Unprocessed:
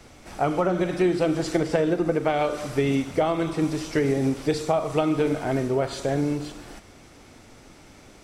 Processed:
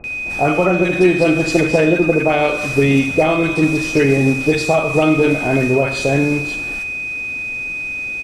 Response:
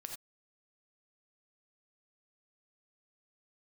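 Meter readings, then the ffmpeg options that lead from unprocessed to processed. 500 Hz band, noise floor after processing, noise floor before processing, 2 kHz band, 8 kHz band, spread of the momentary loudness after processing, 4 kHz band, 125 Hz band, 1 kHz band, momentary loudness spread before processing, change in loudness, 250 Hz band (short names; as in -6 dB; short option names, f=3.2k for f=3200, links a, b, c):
+8.5 dB, -25 dBFS, -50 dBFS, +17.5 dB, +9.0 dB, 8 LU, +9.0 dB, +9.5 dB, +7.0 dB, 4 LU, +9.0 dB, +9.0 dB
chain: -filter_complex "[0:a]aeval=exprs='val(0)+0.0251*sin(2*PI*2500*n/s)':c=same,acrossover=split=1000[a][b];[b]adelay=40[c];[a][c]amix=inputs=2:normalize=0,asplit=2[d][e];[1:a]atrim=start_sample=2205[f];[e][f]afir=irnorm=-1:irlink=0,volume=-2dB[g];[d][g]amix=inputs=2:normalize=0,volume=5.5dB"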